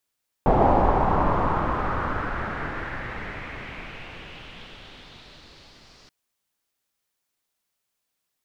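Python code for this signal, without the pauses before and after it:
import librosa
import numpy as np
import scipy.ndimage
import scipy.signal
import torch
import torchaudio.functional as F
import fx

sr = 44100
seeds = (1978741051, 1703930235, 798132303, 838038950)

y = fx.riser_noise(sr, seeds[0], length_s=5.63, colour='pink', kind='lowpass', start_hz=760.0, end_hz=5100.0, q=2.9, swell_db=-37.0, law='exponential')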